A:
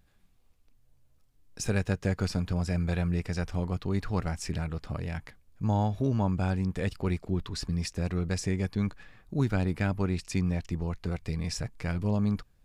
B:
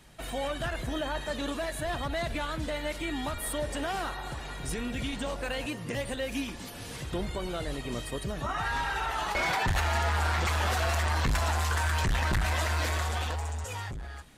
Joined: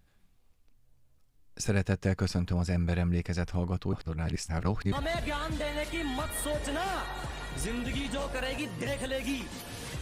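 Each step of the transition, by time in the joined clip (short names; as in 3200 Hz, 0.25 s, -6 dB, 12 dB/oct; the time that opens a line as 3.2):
A
3.93–4.92 reverse
4.92 switch to B from 2 s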